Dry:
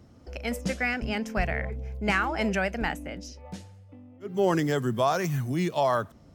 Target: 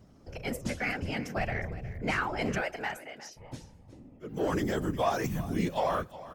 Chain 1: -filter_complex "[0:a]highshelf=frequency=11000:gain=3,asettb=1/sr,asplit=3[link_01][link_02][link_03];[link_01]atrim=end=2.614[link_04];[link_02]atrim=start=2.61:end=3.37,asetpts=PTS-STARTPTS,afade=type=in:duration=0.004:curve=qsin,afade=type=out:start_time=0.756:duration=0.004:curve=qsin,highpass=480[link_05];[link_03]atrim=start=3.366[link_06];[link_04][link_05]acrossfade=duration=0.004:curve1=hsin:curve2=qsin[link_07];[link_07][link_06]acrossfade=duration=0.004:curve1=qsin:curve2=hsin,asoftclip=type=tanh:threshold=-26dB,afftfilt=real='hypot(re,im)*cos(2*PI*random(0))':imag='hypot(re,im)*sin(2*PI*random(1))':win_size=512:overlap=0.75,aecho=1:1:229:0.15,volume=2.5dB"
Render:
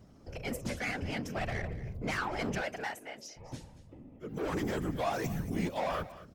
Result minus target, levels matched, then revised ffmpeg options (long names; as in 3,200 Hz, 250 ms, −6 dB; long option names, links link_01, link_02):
echo 132 ms early; soft clipping: distortion +11 dB
-filter_complex "[0:a]highshelf=frequency=11000:gain=3,asettb=1/sr,asplit=3[link_01][link_02][link_03];[link_01]atrim=end=2.614[link_04];[link_02]atrim=start=2.61:end=3.37,asetpts=PTS-STARTPTS,afade=type=in:duration=0.004:curve=qsin,afade=type=out:start_time=0.756:duration=0.004:curve=qsin,highpass=480[link_05];[link_03]atrim=start=3.366[link_06];[link_04][link_05]acrossfade=duration=0.004:curve1=hsin:curve2=qsin[link_07];[link_07][link_06]acrossfade=duration=0.004:curve1=qsin:curve2=hsin,asoftclip=type=tanh:threshold=-16dB,afftfilt=real='hypot(re,im)*cos(2*PI*random(0))':imag='hypot(re,im)*sin(2*PI*random(1))':win_size=512:overlap=0.75,aecho=1:1:361:0.15,volume=2.5dB"